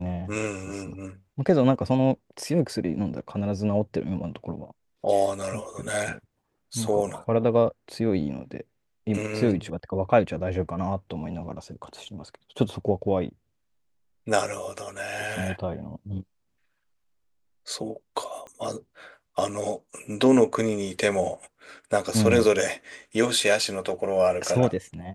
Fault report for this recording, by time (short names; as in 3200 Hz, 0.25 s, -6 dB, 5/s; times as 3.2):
18.47 pop -29 dBFS